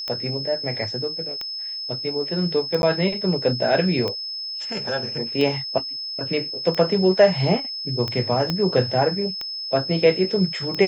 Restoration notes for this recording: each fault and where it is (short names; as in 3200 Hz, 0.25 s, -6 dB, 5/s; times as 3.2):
tick 45 rpm -14 dBFS
tone 5200 Hz -28 dBFS
2.82–2.83 gap 11 ms
8.5 pop -10 dBFS